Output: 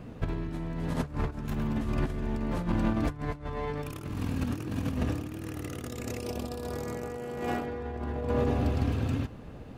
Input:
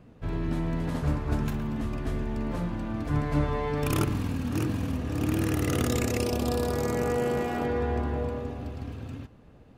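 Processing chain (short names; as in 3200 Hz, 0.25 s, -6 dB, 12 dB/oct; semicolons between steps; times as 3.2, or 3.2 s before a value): negative-ratio compressor -33 dBFS, ratio -0.5; gain +3 dB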